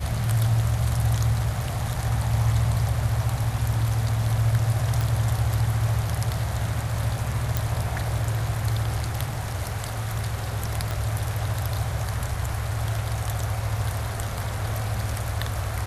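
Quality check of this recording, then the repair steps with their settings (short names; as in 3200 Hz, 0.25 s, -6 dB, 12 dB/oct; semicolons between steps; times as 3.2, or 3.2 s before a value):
5.01 pop
7.57 pop
10.91 pop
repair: de-click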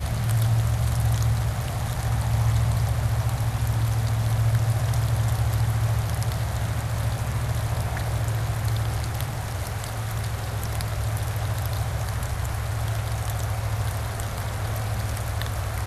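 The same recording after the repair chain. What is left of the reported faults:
10.91 pop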